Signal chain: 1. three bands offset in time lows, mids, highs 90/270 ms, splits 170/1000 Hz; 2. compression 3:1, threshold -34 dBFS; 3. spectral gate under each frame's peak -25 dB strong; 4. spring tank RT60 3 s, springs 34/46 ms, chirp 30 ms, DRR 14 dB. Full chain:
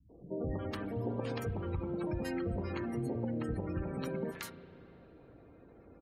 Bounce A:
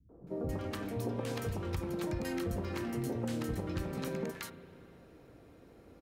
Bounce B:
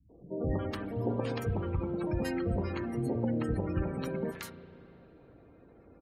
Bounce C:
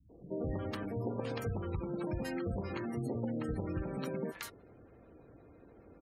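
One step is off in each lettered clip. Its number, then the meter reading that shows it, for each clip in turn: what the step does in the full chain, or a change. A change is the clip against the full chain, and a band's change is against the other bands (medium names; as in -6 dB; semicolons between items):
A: 3, 8 kHz band +6.0 dB; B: 2, momentary loudness spread change -9 LU; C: 4, momentary loudness spread change -10 LU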